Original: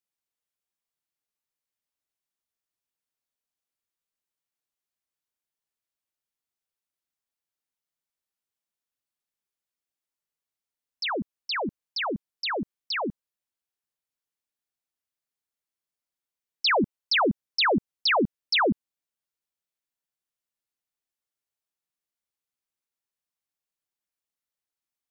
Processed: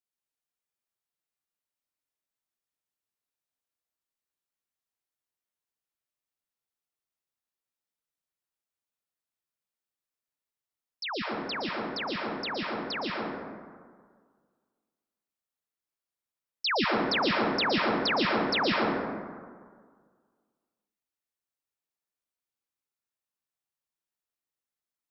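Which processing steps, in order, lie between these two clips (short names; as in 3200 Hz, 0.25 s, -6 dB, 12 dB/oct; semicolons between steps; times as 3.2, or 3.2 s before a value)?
plate-style reverb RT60 1.8 s, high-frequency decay 0.4×, pre-delay 0.105 s, DRR -2.5 dB; gain -6 dB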